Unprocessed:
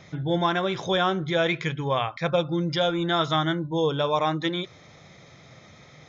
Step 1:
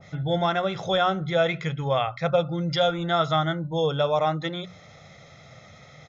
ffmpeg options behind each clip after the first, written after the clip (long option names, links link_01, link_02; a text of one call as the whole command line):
ffmpeg -i in.wav -af "bandreject=frequency=60:width_type=h:width=6,bandreject=frequency=120:width_type=h:width=6,bandreject=frequency=180:width_type=h:width=6,aecho=1:1:1.5:0.53,adynamicequalizer=threshold=0.0158:dfrequency=1500:dqfactor=0.7:tfrequency=1500:tqfactor=0.7:attack=5:release=100:ratio=0.375:range=3:mode=cutabove:tftype=highshelf" out.wav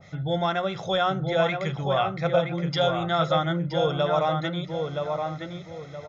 ffmpeg -i in.wav -filter_complex "[0:a]asplit=2[link_01][link_02];[link_02]adelay=971,lowpass=frequency=2200:poles=1,volume=-4dB,asplit=2[link_03][link_04];[link_04]adelay=971,lowpass=frequency=2200:poles=1,volume=0.33,asplit=2[link_05][link_06];[link_06]adelay=971,lowpass=frequency=2200:poles=1,volume=0.33,asplit=2[link_07][link_08];[link_08]adelay=971,lowpass=frequency=2200:poles=1,volume=0.33[link_09];[link_01][link_03][link_05][link_07][link_09]amix=inputs=5:normalize=0,volume=-1.5dB" out.wav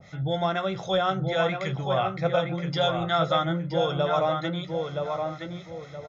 ffmpeg -i in.wav -filter_complex "[0:a]acrossover=split=790[link_01][link_02];[link_01]aeval=exprs='val(0)*(1-0.5/2+0.5/2*cos(2*PI*4*n/s))':channel_layout=same[link_03];[link_02]aeval=exprs='val(0)*(1-0.5/2-0.5/2*cos(2*PI*4*n/s))':channel_layout=same[link_04];[link_03][link_04]amix=inputs=2:normalize=0,asplit=2[link_05][link_06];[link_06]adelay=16,volume=-10.5dB[link_07];[link_05][link_07]amix=inputs=2:normalize=0,volume=1.5dB" out.wav